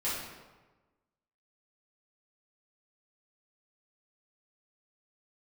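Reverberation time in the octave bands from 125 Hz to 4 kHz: 1.4 s, 1.3 s, 1.3 s, 1.2 s, 1.0 s, 0.80 s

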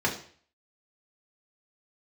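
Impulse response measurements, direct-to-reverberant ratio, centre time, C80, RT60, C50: -3.0 dB, 19 ms, 13.5 dB, 0.50 s, 9.5 dB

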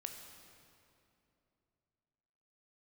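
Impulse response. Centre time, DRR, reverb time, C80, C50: 55 ms, 4.0 dB, 2.8 s, 6.0 dB, 5.0 dB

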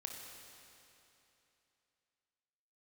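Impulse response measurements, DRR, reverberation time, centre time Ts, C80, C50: 1.0 dB, 3.0 s, 105 ms, 3.0 dB, 2.0 dB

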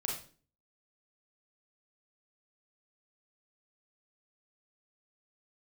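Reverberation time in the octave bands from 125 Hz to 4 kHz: 0.65 s, 0.55 s, 0.45 s, 0.35 s, 0.35 s, 0.35 s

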